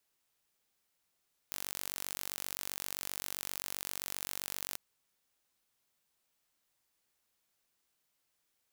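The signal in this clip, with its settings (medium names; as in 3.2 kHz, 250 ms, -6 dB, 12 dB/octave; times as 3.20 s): pulse train 47.6 per s, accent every 0, -11.5 dBFS 3.25 s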